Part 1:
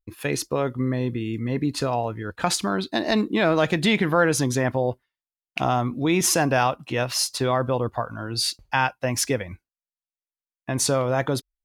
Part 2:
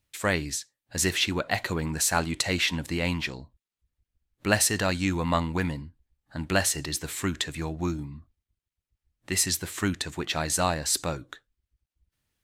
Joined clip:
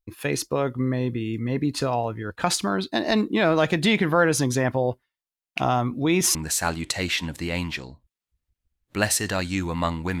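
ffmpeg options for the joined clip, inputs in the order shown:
ffmpeg -i cue0.wav -i cue1.wav -filter_complex "[0:a]apad=whole_dur=10.2,atrim=end=10.2,atrim=end=6.352[link_01];[1:a]atrim=start=1.848:end=5.7[link_02];[link_01][link_02]acrossfade=duration=0.004:curve1=hsin:curve2=hsin" out.wav

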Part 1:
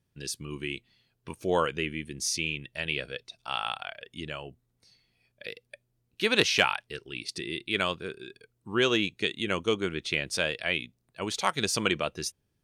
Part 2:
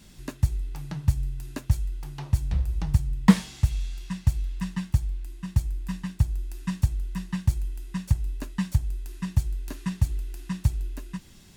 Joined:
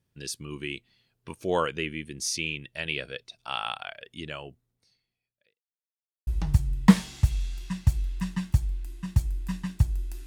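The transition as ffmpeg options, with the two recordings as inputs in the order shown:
ffmpeg -i cue0.wav -i cue1.wav -filter_complex "[0:a]apad=whole_dur=10.26,atrim=end=10.26,asplit=2[link_01][link_02];[link_01]atrim=end=5.66,asetpts=PTS-STARTPTS,afade=type=out:start_time=4.48:duration=1.18:curve=qua[link_03];[link_02]atrim=start=5.66:end=6.27,asetpts=PTS-STARTPTS,volume=0[link_04];[1:a]atrim=start=2.67:end=6.66,asetpts=PTS-STARTPTS,afade=type=in:duration=0.004:curve=hsin[link_05];[link_03][link_04][link_05]concat=n=3:v=0:a=1" out.wav

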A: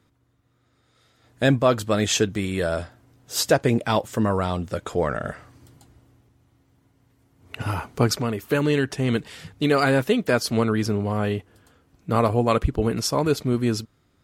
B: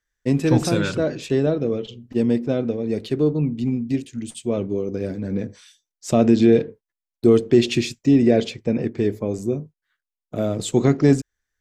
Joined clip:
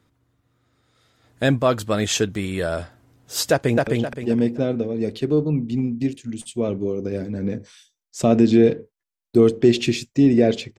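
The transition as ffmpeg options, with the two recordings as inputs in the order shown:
ffmpeg -i cue0.wav -i cue1.wav -filter_complex "[0:a]apad=whole_dur=10.78,atrim=end=10.78,atrim=end=3.872[link_01];[1:a]atrim=start=1.758:end=8.67[link_02];[link_01][link_02]acrossfade=duration=0.004:curve1=hsin:curve2=hsin,asplit=2[link_03][link_04];[link_04]afade=type=in:start_time=3.51:duration=0.01,afade=type=out:start_time=3.87:duration=0.01,aecho=0:1:260|520|780|1040|1300:0.794328|0.278015|0.0973052|0.0340568|0.0119199[link_05];[link_03][link_05]amix=inputs=2:normalize=0" out.wav

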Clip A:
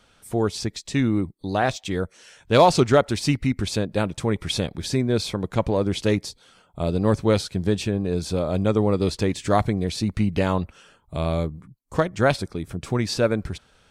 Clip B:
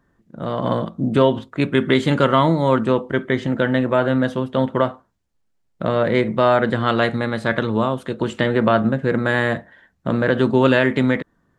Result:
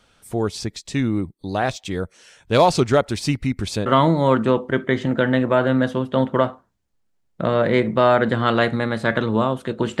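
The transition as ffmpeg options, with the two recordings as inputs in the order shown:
ffmpeg -i cue0.wav -i cue1.wav -filter_complex "[0:a]apad=whole_dur=10,atrim=end=10,atrim=end=3.862[link_01];[1:a]atrim=start=2.268:end=8.41[link_02];[link_01][link_02]acrossfade=duration=0.004:curve1=hsin:curve2=hsin" out.wav

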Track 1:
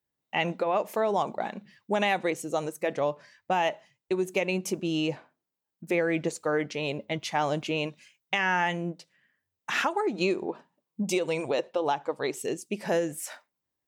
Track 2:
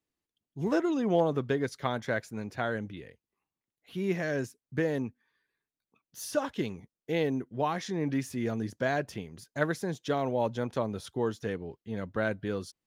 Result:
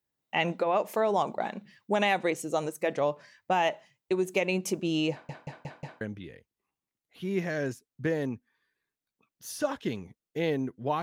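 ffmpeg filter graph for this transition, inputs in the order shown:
ffmpeg -i cue0.wav -i cue1.wav -filter_complex "[0:a]apad=whole_dur=11.02,atrim=end=11.02,asplit=5[link_01][link_02][link_03][link_04][link_05];[link_01]atrim=end=5.292[link_06];[link_02]atrim=start=5.108:end=5.292[link_07];[link_03]atrim=start=5.108:end=5.292[link_08];[link_04]atrim=start=5.108:end=5.292[link_09];[link_05]atrim=start=5.108:end=5.292[link_10];[1:a]atrim=start=2.738:end=7.75[link_11];[link_06][link_07]acrossfade=duration=0.004:curve1=hsin:curve2=hsin[link_12];[link_12][link_08]acrossfade=duration=0.004:curve1=hsin:curve2=hsin[link_13];[link_13][link_09]acrossfade=duration=0.004:curve1=hsin:curve2=hsin[link_14];[link_14][link_10]acrossfade=duration=0.004:curve1=hsin:curve2=hsin[link_15];[link_15][link_11]acrossfade=duration=0.004:curve1=hsin:curve2=hsin" out.wav

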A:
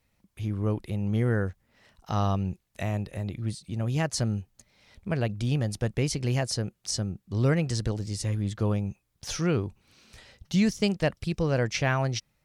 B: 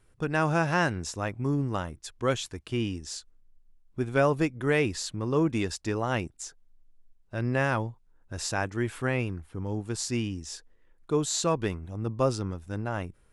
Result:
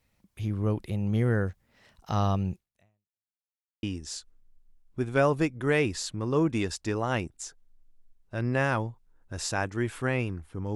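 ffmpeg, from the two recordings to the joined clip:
ffmpeg -i cue0.wav -i cue1.wav -filter_complex "[0:a]apad=whole_dur=10.75,atrim=end=10.75,asplit=2[link_01][link_02];[link_01]atrim=end=3.38,asetpts=PTS-STARTPTS,afade=type=out:start_time=2.55:duration=0.83:curve=exp[link_03];[link_02]atrim=start=3.38:end=3.83,asetpts=PTS-STARTPTS,volume=0[link_04];[1:a]atrim=start=2.83:end=9.75,asetpts=PTS-STARTPTS,afade=type=in:duration=0.004:curve=hsin[link_05];[link_03][link_04][link_05]concat=n=3:v=0:a=1" out.wav

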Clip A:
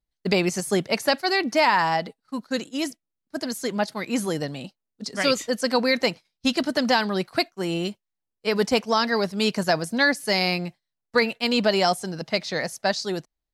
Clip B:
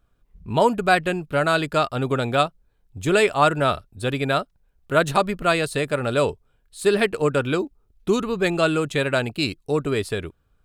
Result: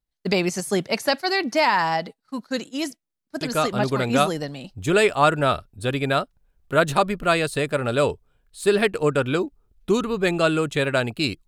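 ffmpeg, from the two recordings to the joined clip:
ffmpeg -i cue0.wav -i cue1.wav -filter_complex "[0:a]apad=whole_dur=11.47,atrim=end=11.47,atrim=end=5.01,asetpts=PTS-STARTPTS[link_01];[1:a]atrim=start=1.6:end=9.66,asetpts=PTS-STARTPTS[link_02];[link_01][link_02]acrossfade=duration=1.6:curve1=log:curve2=log" out.wav

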